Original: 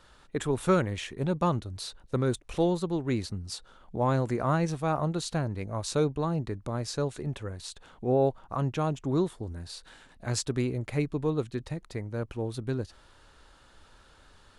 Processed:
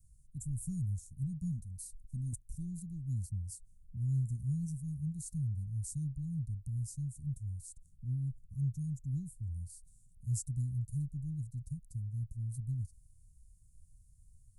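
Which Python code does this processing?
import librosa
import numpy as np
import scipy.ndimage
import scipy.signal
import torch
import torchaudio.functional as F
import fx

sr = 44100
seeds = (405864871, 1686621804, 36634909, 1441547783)

y = scipy.signal.sosfilt(scipy.signal.cheby2(4, 60, [420.0, 3100.0], 'bandstop', fs=sr, output='sos'), x)
y = fx.comb(y, sr, ms=4.5, depth=0.64, at=(1.43, 2.33))
y = 10.0 ** (-16.5 / 20.0) * np.tanh(y / 10.0 ** (-16.5 / 20.0))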